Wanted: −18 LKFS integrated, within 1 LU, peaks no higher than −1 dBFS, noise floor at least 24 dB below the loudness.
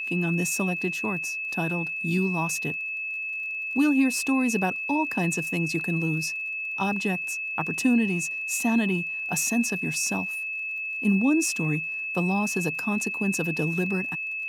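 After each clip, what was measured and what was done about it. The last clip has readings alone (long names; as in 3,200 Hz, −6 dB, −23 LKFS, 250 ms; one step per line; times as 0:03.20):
crackle rate 34 per second; interfering tone 2,600 Hz; level of the tone −29 dBFS; integrated loudness −25.5 LKFS; sample peak −11.0 dBFS; target loudness −18.0 LKFS
→ click removal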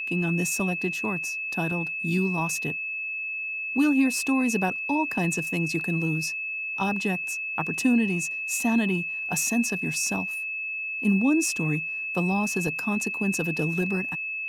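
crackle rate 0.14 per second; interfering tone 2,600 Hz; level of the tone −29 dBFS
→ notch filter 2,600 Hz, Q 30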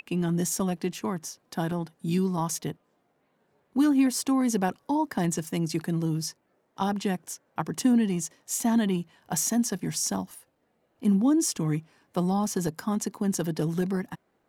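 interfering tone none found; integrated loudness −27.5 LKFS; sample peak −12.5 dBFS; target loudness −18.0 LKFS
→ level +9.5 dB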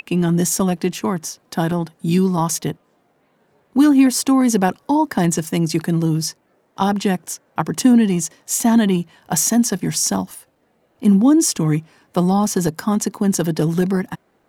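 integrated loudness −18.0 LKFS; sample peak −3.0 dBFS; background noise floor −62 dBFS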